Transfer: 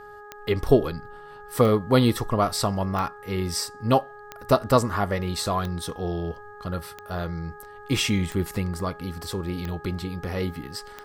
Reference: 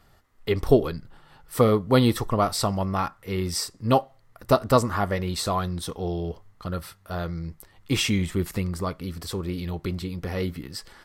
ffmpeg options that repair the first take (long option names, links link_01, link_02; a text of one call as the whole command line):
ffmpeg -i in.wav -af "adeclick=threshold=4,bandreject=frequency=415.2:width_type=h:width=4,bandreject=frequency=830.4:width_type=h:width=4,bandreject=frequency=1245.6:width_type=h:width=4,bandreject=frequency=1660.8:width_type=h:width=4" out.wav